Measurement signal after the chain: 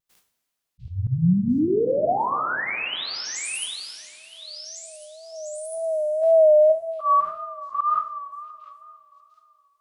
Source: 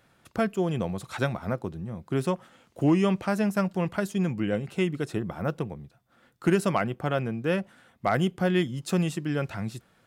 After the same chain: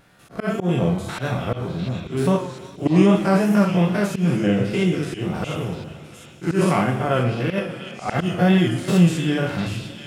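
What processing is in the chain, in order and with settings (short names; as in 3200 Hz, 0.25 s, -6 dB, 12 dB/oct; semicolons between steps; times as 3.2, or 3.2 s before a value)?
stepped spectrum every 0.1 s; two-slope reverb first 0.45 s, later 3.1 s, from -16 dB, DRR 1 dB; wow and flutter 68 cents; auto swell 0.114 s; on a send: delay with a stepping band-pass 0.7 s, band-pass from 3400 Hz, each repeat 0.7 oct, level -3 dB; on the sum: gain +7.5 dB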